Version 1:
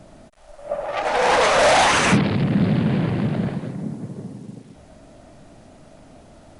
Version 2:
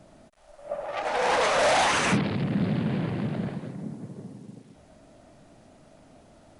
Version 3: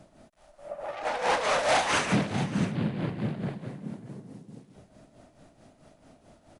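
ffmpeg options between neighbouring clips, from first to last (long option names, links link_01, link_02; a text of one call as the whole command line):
ffmpeg -i in.wav -af "lowshelf=frequency=78:gain=-5.5,volume=-6.5dB" out.wav
ffmpeg -i in.wav -af "aecho=1:1:333|590:0.119|0.2,tremolo=f=4.6:d=0.64" out.wav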